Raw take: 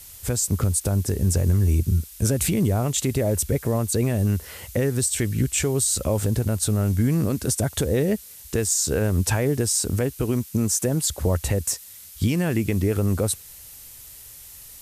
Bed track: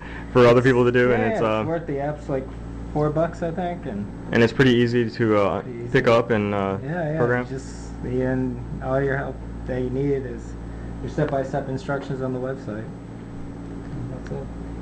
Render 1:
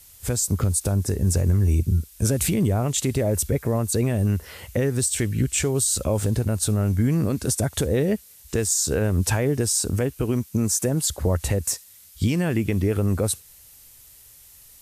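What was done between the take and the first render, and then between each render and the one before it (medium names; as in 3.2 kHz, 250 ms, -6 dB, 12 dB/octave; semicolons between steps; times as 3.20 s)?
noise print and reduce 6 dB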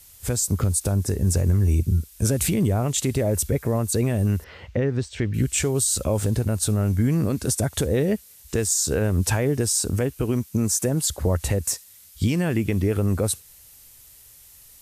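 4.44–5.34 s: distance through air 210 m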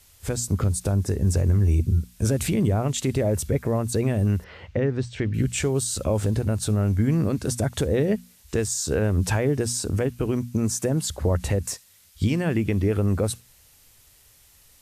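treble shelf 7.1 kHz -10.5 dB; hum notches 60/120/180/240 Hz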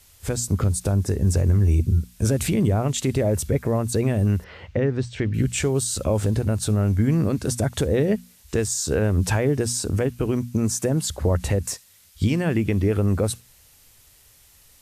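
trim +1.5 dB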